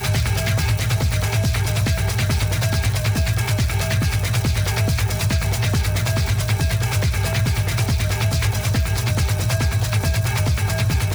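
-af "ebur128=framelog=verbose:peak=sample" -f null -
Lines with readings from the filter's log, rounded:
Integrated loudness:
  I:         -20.2 LUFS
  Threshold: -30.2 LUFS
Loudness range:
  LRA:         0.1 LU
  Threshold: -40.2 LUFS
  LRA low:   -20.3 LUFS
  LRA high:  -20.1 LUFS
Sample peak:
  Peak:      -10.1 dBFS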